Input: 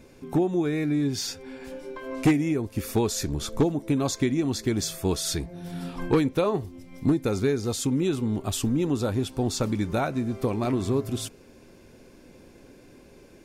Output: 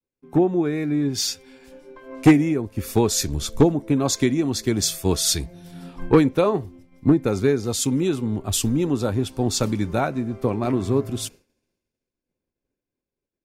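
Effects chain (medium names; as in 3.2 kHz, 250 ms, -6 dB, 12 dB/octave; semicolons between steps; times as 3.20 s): expander -41 dBFS; three bands expanded up and down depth 70%; trim +3.5 dB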